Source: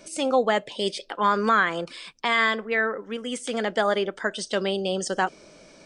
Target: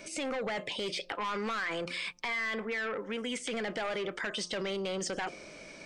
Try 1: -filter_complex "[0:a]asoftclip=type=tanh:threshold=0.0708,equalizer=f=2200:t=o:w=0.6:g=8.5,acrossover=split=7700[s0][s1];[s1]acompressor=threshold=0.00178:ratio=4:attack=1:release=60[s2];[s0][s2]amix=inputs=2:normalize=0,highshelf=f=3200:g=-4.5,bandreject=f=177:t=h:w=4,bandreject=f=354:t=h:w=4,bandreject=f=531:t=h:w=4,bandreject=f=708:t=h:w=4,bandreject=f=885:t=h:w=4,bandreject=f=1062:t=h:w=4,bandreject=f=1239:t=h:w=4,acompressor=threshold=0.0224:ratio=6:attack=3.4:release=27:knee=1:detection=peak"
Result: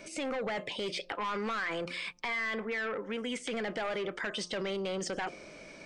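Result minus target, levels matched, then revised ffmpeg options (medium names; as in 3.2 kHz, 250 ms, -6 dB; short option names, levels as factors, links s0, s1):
8 kHz band -2.5 dB
-filter_complex "[0:a]asoftclip=type=tanh:threshold=0.0708,equalizer=f=2200:t=o:w=0.6:g=8.5,acrossover=split=7700[s0][s1];[s1]acompressor=threshold=0.00178:ratio=4:attack=1:release=60[s2];[s0][s2]amix=inputs=2:normalize=0,bandreject=f=177:t=h:w=4,bandreject=f=354:t=h:w=4,bandreject=f=531:t=h:w=4,bandreject=f=708:t=h:w=4,bandreject=f=885:t=h:w=4,bandreject=f=1062:t=h:w=4,bandreject=f=1239:t=h:w=4,acompressor=threshold=0.0224:ratio=6:attack=3.4:release=27:knee=1:detection=peak"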